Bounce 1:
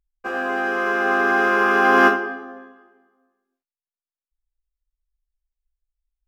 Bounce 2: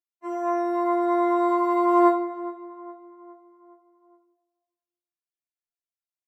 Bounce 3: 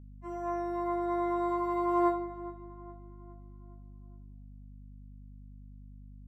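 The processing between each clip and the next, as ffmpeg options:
ffmpeg -i in.wav -filter_complex "[0:a]highpass=160,asplit=2[link_01][link_02];[link_02]adelay=414,lowpass=frequency=2200:poles=1,volume=-16.5dB,asplit=2[link_03][link_04];[link_04]adelay=414,lowpass=frequency=2200:poles=1,volume=0.51,asplit=2[link_05][link_06];[link_06]adelay=414,lowpass=frequency=2200:poles=1,volume=0.51,asplit=2[link_07][link_08];[link_08]adelay=414,lowpass=frequency=2200:poles=1,volume=0.51,asplit=2[link_09][link_10];[link_10]adelay=414,lowpass=frequency=2200:poles=1,volume=0.51[link_11];[link_01][link_03][link_05][link_07][link_09][link_11]amix=inputs=6:normalize=0,afftfilt=real='re*4*eq(mod(b,16),0)':imag='im*4*eq(mod(b,16),0)':win_size=2048:overlap=0.75,volume=-5dB" out.wav
ffmpeg -i in.wav -af "aeval=exprs='val(0)+0.0112*(sin(2*PI*50*n/s)+sin(2*PI*2*50*n/s)/2+sin(2*PI*3*50*n/s)/3+sin(2*PI*4*50*n/s)/4+sin(2*PI*5*50*n/s)/5)':channel_layout=same,volume=-9dB" out.wav

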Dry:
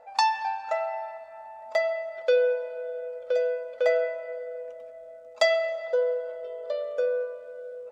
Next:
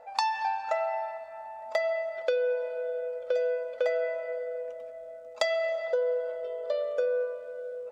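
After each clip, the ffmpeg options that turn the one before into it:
ffmpeg -i in.wav -af "acompressor=threshold=-25dB:ratio=12,volume=1.5dB" out.wav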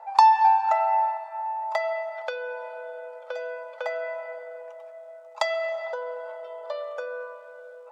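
ffmpeg -i in.wav -af "highpass=frequency=910:width_type=q:width=4.9" out.wav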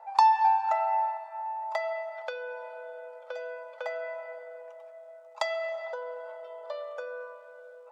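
ffmpeg -i in.wav -af "bandreject=frequency=429.7:width_type=h:width=4,bandreject=frequency=859.4:width_type=h:width=4,bandreject=frequency=1289.1:width_type=h:width=4,bandreject=frequency=1718.8:width_type=h:width=4,bandreject=frequency=2148.5:width_type=h:width=4,bandreject=frequency=2578.2:width_type=h:width=4,bandreject=frequency=3007.9:width_type=h:width=4,bandreject=frequency=3437.6:width_type=h:width=4,bandreject=frequency=3867.3:width_type=h:width=4,bandreject=frequency=4297:width_type=h:width=4,bandreject=frequency=4726.7:width_type=h:width=4,bandreject=frequency=5156.4:width_type=h:width=4,bandreject=frequency=5586.1:width_type=h:width=4,bandreject=frequency=6015.8:width_type=h:width=4,bandreject=frequency=6445.5:width_type=h:width=4,bandreject=frequency=6875.2:width_type=h:width=4,bandreject=frequency=7304.9:width_type=h:width=4,bandreject=frequency=7734.6:width_type=h:width=4,bandreject=frequency=8164.3:width_type=h:width=4,bandreject=frequency=8594:width_type=h:width=4,bandreject=frequency=9023.7:width_type=h:width=4,bandreject=frequency=9453.4:width_type=h:width=4,bandreject=frequency=9883.1:width_type=h:width=4,bandreject=frequency=10312.8:width_type=h:width=4,bandreject=frequency=10742.5:width_type=h:width=4,bandreject=frequency=11172.2:width_type=h:width=4,bandreject=frequency=11601.9:width_type=h:width=4,bandreject=frequency=12031.6:width_type=h:width=4,bandreject=frequency=12461.3:width_type=h:width=4,bandreject=frequency=12891:width_type=h:width=4,bandreject=frequency=13320.7:width_type=h:width=4,bandreject=frequency=13750.4:width_type=h:width=4,bandreject=frequency=14180.1:width_type=h:width=4,bandreject=frequency=14609.8:width_type=h:width=4,bandreject=frequency=15039.5:width_type=h:width=4,bandreject=frequency=15469.2:width_type=h:width=4,bandreject=frequency=15898.9:width_type=h:width=4,bandreject=frequency=16328.6:width_type=h:width=4,bandreject=frequency=16758.3:width_type=h:width=4,volume=-4.5dB" out.wav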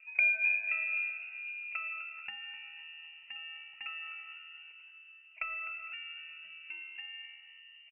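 ffmpeg -i in.wav -filter_complex "[0:a]lowpass=frequency=2800:width_type=q:width=0.5098,lowpass=frequency=2800:width_type=q:width=0.6013,lowpass=frequency=2800:width_type=q:width=0.9,lowpass=frequency=2800:width_type=q:width=2.563,afreqshift=-3300,asplit=5[link_01][link_02][link_03][link_04][link_05];[link_02]adelay=253,afreqshift=70,volume=-14dB[link_06];[link_03]adelay=506,afreqshift=140,volume=-20.7dB[link_07];[link_04]adelay=759,afreqshift=210,volume=-27.5dB[link_08];[link_05]adelay=1012,afreqshift=280,volume=-34.2dB[link_09];[link_01][link_06][link_07][link_08][link_09]amix=inputs=5:normalize=0,volume=-7.5dB" out.wav

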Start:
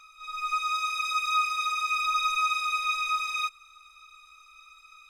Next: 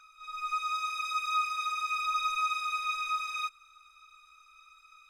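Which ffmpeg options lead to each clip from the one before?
ffmpeg -i in.wav -af "equalizer=frequency=1500:width=6.7:gain=14,volume=-6dB" out.wav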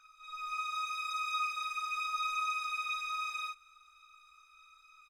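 ffmpeg -i in.wav -af "aecho=1:1:18|53:0.531|0.631,volume=-5.5dB" out.wav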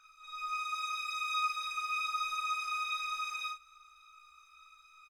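ffmpeg -i in.wav -filter_complex "[0:a]asplit=2[link_01][link_02];[link_02]adelay=36,volume=-3.5dB[link_03];[link_01][link_03]amix=inputs=2:normalize=0" out.wav

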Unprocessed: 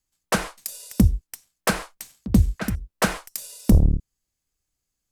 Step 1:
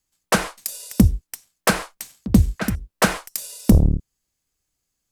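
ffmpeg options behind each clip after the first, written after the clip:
ffmpeg -i in.wav -af "lowshelf=frequency=73:gain=-5.5,volume=4dB" out.wav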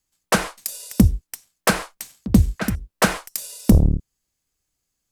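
ffmpeg -i in.wav -af anull out.wav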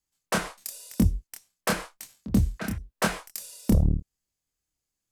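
ffmpeg -i in.wav -af "flanger=delay=22.5:depth=6.5:speed=0.94,volume=-4.5dB" out.wav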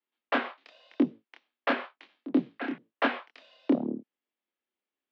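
ffmpeg -i in.wav -af "highpass=frequency=180:width_type=q:width=0.5412,highpass=frequency=180:width_type=q:width=1.307,lowpass=frequency=3400:width_type=q:width=0.5176,lowpass=frequency=3400:width_type=q:width=0.7071,lowpass=frequency=3400:width_type=q:width=1.932,afreqshift=64" out.wav

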